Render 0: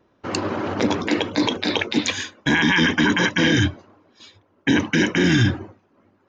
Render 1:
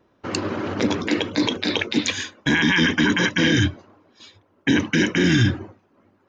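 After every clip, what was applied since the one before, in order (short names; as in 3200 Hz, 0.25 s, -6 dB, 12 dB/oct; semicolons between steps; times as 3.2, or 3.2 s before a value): dynamic EQ 810 Hz, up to -5 dB, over -36 dBFS, Q 1.4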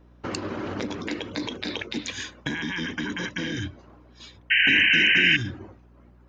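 compressor, threshold -28 dBFS, peak gain reduction 14 dB; hum 60 Hz, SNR 21 dB; painted sound noise, 4.5–5.37, 1500–3100 Hz -19 dBFS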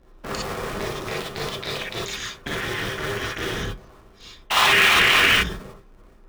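cycle switcher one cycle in 2, inverted; non-linear reverb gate 80 ms rising, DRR -4.5 dB; gain -3 dB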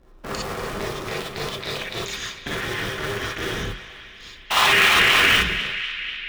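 narrowing echo 0.247 s, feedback 80%, band-pass 2600 Hz, level -11 dB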